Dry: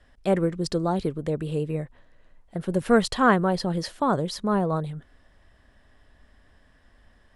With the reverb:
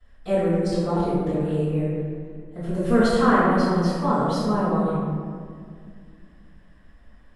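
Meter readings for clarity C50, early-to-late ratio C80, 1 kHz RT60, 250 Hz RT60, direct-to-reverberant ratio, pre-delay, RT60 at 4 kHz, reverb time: -3.0 dB, -0.5 dB, 1.9 s, 3.1 s, -18.5 dB, 3 ms, 1.0 s, 2.1 s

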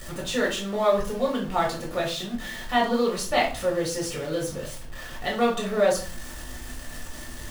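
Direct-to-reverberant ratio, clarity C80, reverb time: -3.0 dB, 13.0 dB, 0.40 s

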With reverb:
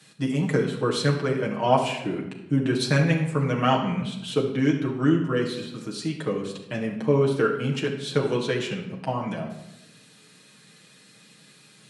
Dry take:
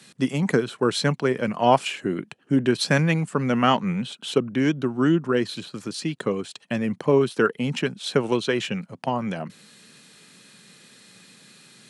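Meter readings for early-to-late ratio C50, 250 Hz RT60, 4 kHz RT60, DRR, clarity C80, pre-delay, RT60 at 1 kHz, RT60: 7.0 dB, 1.1 s, 0.65 s, -2.5 dB, 9.5 dB, 6 ms, 0.80 s, 0.90 s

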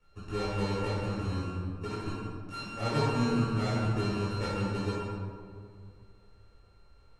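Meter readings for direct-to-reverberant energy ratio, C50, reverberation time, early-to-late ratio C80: -12.5 dB, -3.5 dB, 2.2 s, -1.0 dB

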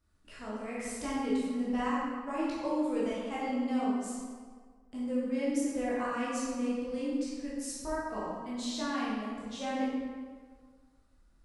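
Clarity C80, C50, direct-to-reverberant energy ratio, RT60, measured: 0.5 dB, -2.0 dB, -8.5 dB, 1.7 s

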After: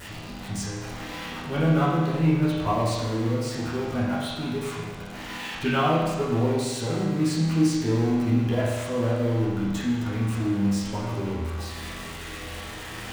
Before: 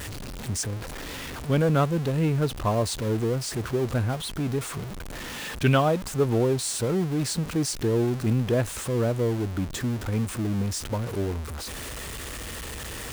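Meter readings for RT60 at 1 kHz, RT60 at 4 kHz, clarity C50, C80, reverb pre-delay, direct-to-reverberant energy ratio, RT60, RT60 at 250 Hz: 1.2 s, 1.2 s, 0.0 dB, 2.5 dB, 10 ms, -9.5 dB, 1.2 s, 1.2 s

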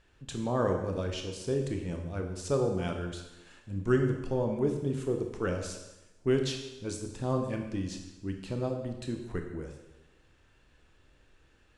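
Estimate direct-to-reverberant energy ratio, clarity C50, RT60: 3.5 dB, 6.0 dB, 1.0 s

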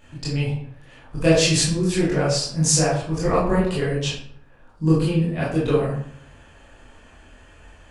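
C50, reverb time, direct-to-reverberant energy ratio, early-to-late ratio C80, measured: 2.0 dB, 0.65 s, -8.0 dB, 6.5 dB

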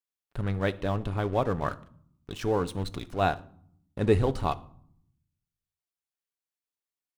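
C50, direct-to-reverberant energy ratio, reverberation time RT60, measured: 19.5 dB, 11.0 dB, 0.60 s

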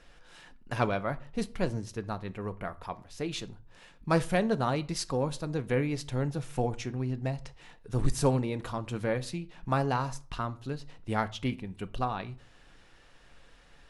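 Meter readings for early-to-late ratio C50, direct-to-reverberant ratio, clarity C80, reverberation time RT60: 20.0 dB, 10.5 dB, 25.5 dB, 0.45 s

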